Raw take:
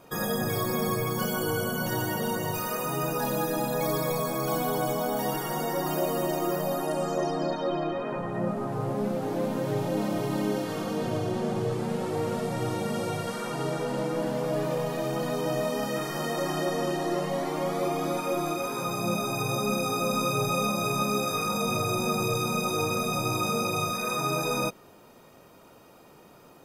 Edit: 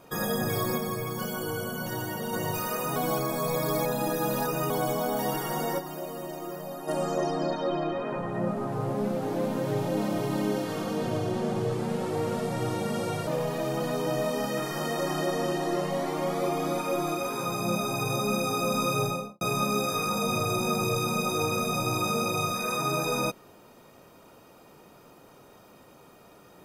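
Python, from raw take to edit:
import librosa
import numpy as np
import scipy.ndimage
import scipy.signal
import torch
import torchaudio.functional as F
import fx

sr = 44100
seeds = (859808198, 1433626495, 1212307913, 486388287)

y = fx.studio_fade_out(x, sr, start_s=20.39, length_s=0.41)
y = fx.edit(y, sr, fx.clip_gain(start_s=0.78, length_s=1.55, db=-4.0),
    fx.reverse_span(start_s=2.96, length_s=1.74),
    fx.fade_down_up(start_s=5.78, length_s=1.11, db=-9.0, fade_s=0.12, curve='exp'),
    fx.cut(start_s=13.27, length_s=1.39), tone=tone)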